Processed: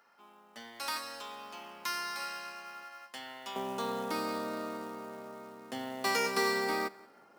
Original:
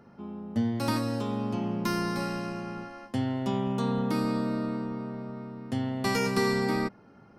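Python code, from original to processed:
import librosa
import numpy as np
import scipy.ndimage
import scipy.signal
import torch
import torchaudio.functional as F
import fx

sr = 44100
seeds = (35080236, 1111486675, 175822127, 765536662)

y = fx.highpass(x, sr, hz=fx.steps((0.0, 1200.0), (3.56, 480.0)), slope=12)
y = fx.quant_float(y, sr, bits=2)
y = fx.echo_feedback(y, sr, ms=179, feedback_pct=29, wet_db=-23.5)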